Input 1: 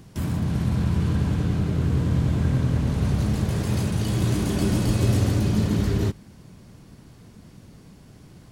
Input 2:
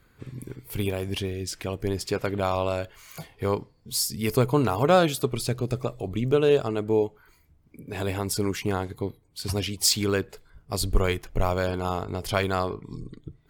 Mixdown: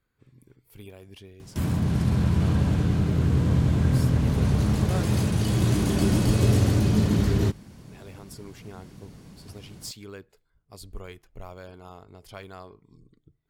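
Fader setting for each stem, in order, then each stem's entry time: +0.5, -17.0 dB; 1.40, 0.00 s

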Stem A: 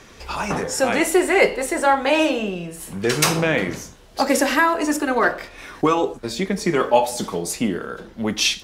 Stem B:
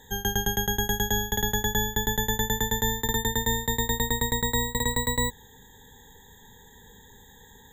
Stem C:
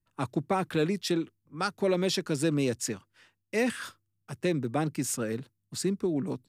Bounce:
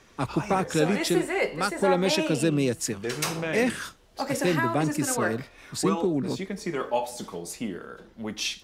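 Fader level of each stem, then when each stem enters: -10.5 dB, off, +3.0 dB; 0.00 s, off, 0.00 s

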